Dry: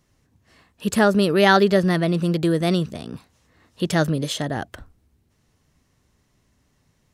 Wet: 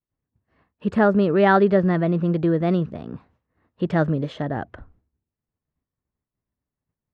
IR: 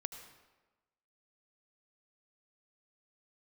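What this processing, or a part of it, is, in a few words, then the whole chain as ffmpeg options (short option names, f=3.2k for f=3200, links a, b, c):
hearing-loss simulation: -af "lowpass=1.6k,agate=range=-33dB:threshold=-51dB:ratio=3:detection=peak"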